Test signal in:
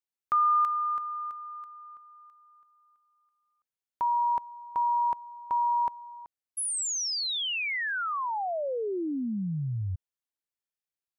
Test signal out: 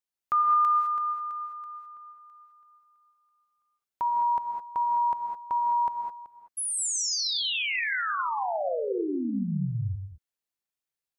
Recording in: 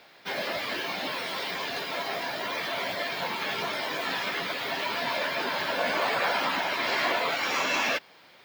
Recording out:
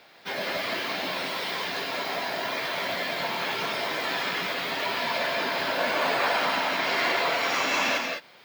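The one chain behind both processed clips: non-linear reverb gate 0.23 s rising, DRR 2.5 dB

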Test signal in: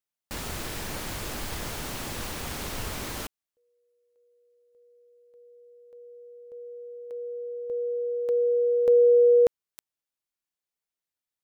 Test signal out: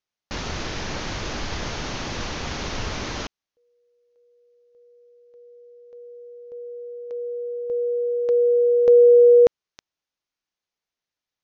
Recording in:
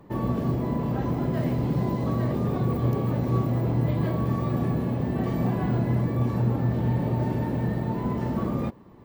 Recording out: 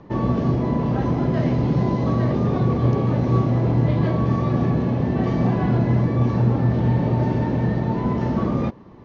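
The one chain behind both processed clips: steep low-pass 6600 Hz 96 dB/oct; gain +5.5 dB

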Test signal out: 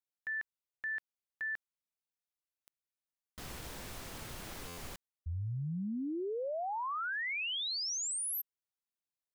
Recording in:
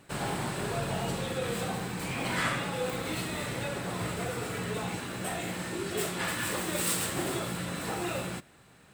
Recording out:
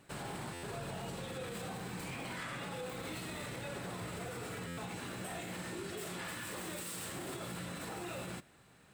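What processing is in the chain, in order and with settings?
limiter -28.5 dBFS; stuck buffer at 0.53/4.67, samples 512, times 8; gain -5 dB

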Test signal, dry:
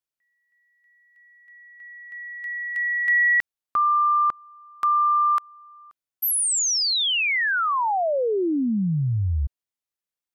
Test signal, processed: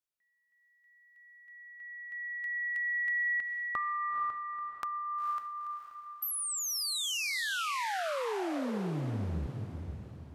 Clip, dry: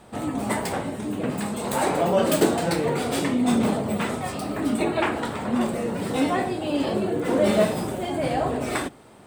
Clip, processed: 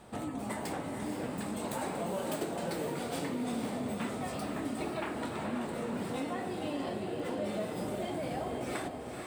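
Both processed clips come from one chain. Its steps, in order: compressor 4:1, threshold -31 dBFS; diffused feedback echo 0.48 s, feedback 44%, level -5 dB; gain -4.5 dB

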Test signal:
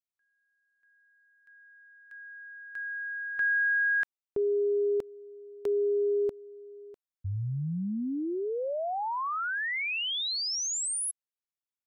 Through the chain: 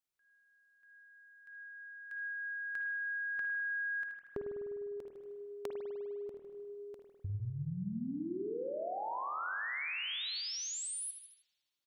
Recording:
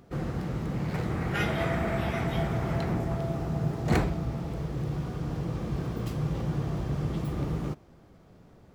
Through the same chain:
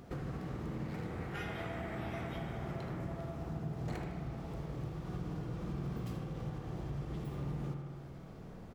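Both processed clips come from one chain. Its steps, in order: feedback echo 78 ms, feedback 36%, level -12.5 dB; compressor 8:1, threshold -41 dBFS; spring tank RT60 1.8 s, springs 50 ms, chirp 30 ms, DRR 3 dB; gain +2 dB

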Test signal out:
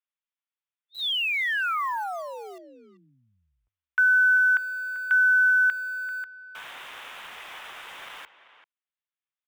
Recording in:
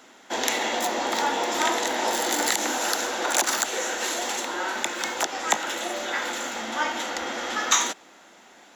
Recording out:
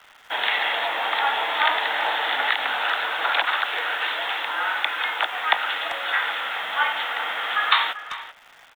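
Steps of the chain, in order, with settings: Butterworth band-pass 2300 Hz, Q 0.54; downsampling 8000 Hz; in parallel at -4 dB: requantised 8-bit, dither none; on the sum: speakerphone echo 0.39 s, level -13 dB; frequency shift -34 Hz; gain +2 dB

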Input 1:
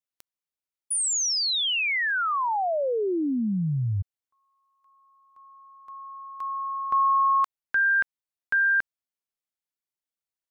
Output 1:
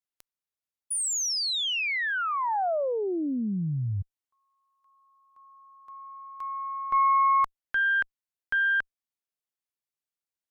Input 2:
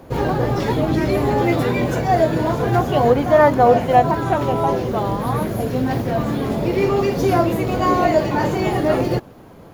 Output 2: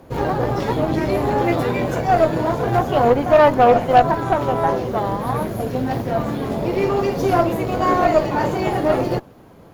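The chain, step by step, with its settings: dynamic EQ 730 Hz, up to +4 dB, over -26 dBFS, Q 0.9; added harmonics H 6 -22 dB, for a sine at 2 dBFS; gain -3 dB

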